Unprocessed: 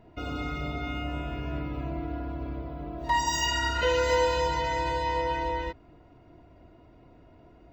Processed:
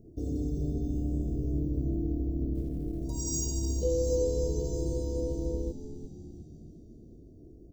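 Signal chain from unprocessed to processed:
elliptic band-stop filter 420–6,500 Hz, stop band 80 dB
0:02.55–0:03.04: log-companded quantiser 8 bits
0:03.84–0:04.56: high-shelf EQ 5,800 Hz −7 dB
on a send: echo with shifted repeats 360 ms, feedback 57%, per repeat −72 Hz, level −11 dB
on the sum: level +3.5 dB

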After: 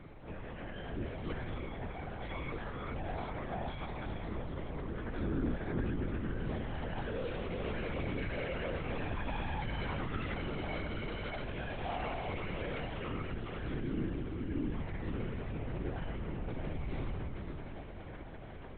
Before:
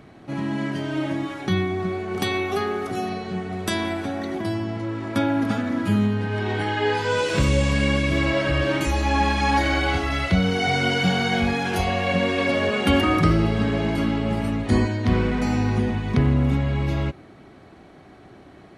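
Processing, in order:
0:13.78–0:14.71: inverse Chebyshev low-pass filter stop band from 820 Hz
brickwall limiter −30 dBFS, peak gain reduction 22.5 dB
chorus effect 0.12 Hz, delay 16 ms, depth 3.1 ms
feedback delay with all-pass diffusion 479 ms, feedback 76%, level −11 dB
convolution reverb RT60 2.6 s, pre-delay 5 ms, DRR 4.5 dB
linear-prediction vocoder at 8 kHz whisper
level −1.5 dB

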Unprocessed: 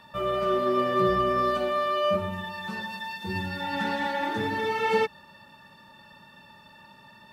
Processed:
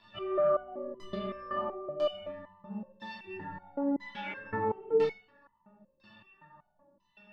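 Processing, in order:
auto-filter low-pass saw down 1 Hz 350–4,800 Hz
rectangular room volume 580 cubic metres, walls furnished, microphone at 3 metres
step-sequenced resonator 5.3 Hz 110–1,000 Hz

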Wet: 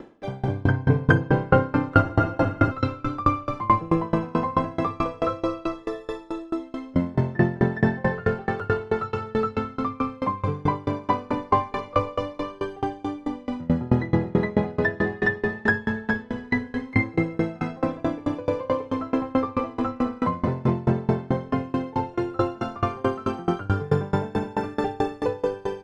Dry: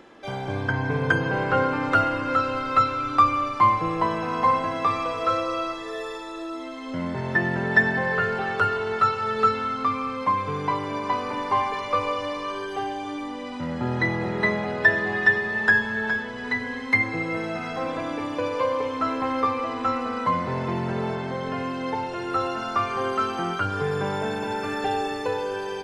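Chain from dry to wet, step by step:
tilt shelving filter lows +7.5 dB, about 760 Hz
flutter between parallel walls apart 10.3 metres, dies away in 0.29 s
frozen spectrum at 0:02.05, 0.66 s
tremolo with a ramp in dB decaying 4.6 Hz, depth 27 dB
level +7 dB

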